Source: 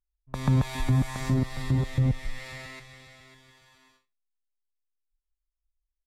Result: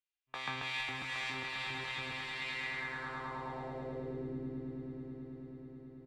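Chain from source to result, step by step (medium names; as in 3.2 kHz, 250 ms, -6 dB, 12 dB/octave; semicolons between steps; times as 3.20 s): spectral sustain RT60 0.64 s; treble shelf 7.9 kHz -7.5 dB; comb 2.5 ms, depth 43%; echo with a slow build-up 108 ms, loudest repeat 8, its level -12 dB; band-pass sweep 2.7 kHz -> 320 Hz, 2.56–4.37 s; trim +5.5 dB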